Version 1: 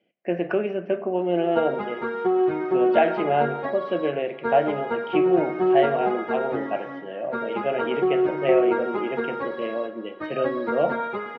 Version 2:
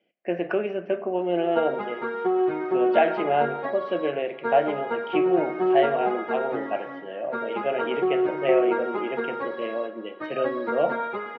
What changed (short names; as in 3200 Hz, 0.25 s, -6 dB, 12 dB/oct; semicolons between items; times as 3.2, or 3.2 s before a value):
background: add air absorption 70 m; master: add low shelf 170 Hz -10 dB